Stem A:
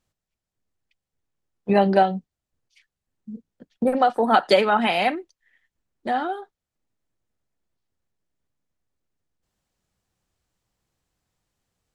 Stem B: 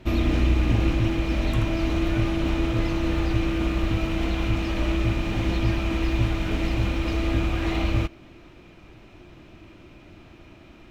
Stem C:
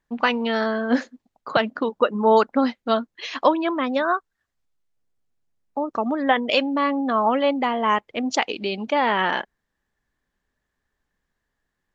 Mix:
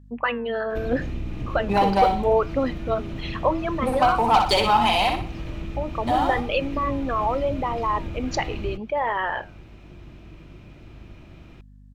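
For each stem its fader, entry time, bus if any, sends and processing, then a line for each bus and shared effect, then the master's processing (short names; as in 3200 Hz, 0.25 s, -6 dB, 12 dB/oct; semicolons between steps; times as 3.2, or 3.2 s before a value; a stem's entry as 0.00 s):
-13.0 dB, 0.00 s, no send, echo send -5.5 dB, EQ curve 600 Hz 0 dB, 990 Hz +15 dB, 1600 Hz -2 dB, 3200 Hz +10 dB; sample leveller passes 2
-1.5 dB, 0.70 s, no send, no echo send, octaver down 1 oct, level +3 dB; compressor 2:1, threshold -36 dBFS, peak gain reduction 13.5 dB
+0.5 dB, 0.00 s, no send, no echo send, formant sharpening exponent 2; flange 0.77 Hz, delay 6.9 ms, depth 5.9 ms, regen -84%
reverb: off
echo: feedback echo 61 ms, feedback 35%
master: hum 50 Hz, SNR 24 dB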